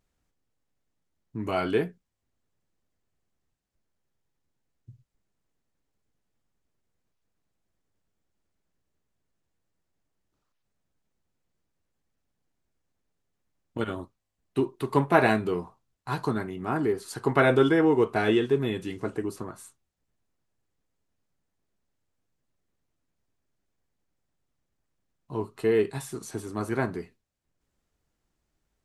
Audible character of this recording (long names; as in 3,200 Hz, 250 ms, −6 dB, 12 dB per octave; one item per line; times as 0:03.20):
background noise floor −81 dBFS
spectral slope −5.5 dB per octave